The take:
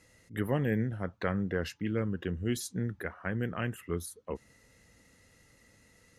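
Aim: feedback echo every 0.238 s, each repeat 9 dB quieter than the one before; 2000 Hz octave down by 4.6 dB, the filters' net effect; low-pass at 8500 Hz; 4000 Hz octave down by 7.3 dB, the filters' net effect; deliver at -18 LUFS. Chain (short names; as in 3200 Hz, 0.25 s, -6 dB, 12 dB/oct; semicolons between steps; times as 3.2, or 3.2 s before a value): LPF 8500 Hz; bell 2000 Hz -4.5 dB; bell 4000 Hz -8.5 dB; feedback echo 0.238 s, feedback 35%, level -9 dB; gain +16.5 dB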